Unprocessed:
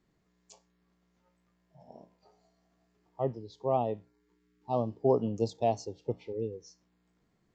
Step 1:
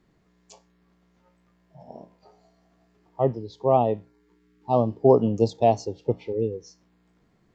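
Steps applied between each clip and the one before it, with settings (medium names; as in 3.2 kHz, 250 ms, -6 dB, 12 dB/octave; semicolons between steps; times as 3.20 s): treble shelf 5.7 kHz -8 dB; trim +9 dB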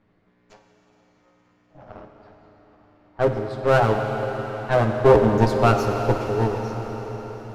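comb filter that takes the minimum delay 9.6 ms; level-controlled noise filter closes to 2.9 kHz, open at -22 dBFS; on a send at -3.5 dB: reverberation RT60 5.5 s, pre-delay 40 ms; on the sum: trim +3.5 dB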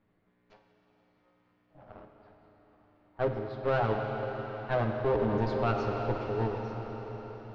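low-pass 4.5 kHz 24 dB/octave; peak limiter -10.5 dBFS, peak gain reduction 7 dB; trim -8.5 dB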